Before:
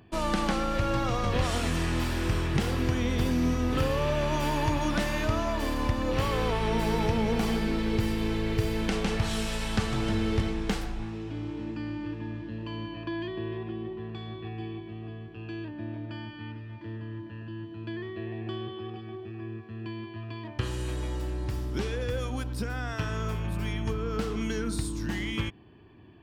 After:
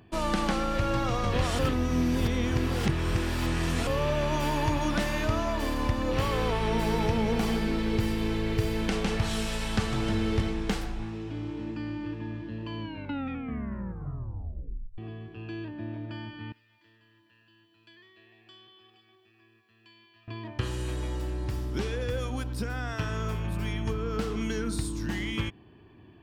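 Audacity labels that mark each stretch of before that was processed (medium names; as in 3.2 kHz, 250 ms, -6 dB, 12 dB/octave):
1.590000	3.870000	reverse
12.790000	12.790000	tape stop 2.19 s
16.520000	20.280000	pre-emphasis filter coefficient 0.97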